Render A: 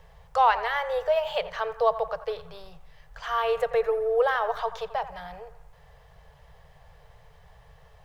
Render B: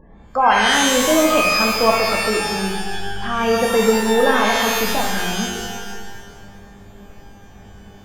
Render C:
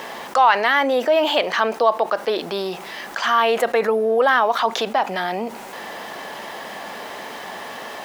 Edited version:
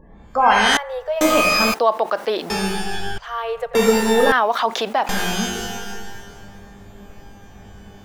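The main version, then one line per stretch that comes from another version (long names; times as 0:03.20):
B
0:00.77–0:01.21: punch in from A
0:01.74–0:02.50: punch in from C
0:03.18–0:03.75: punch in from A
0:04.32–0:05.09: punch in from C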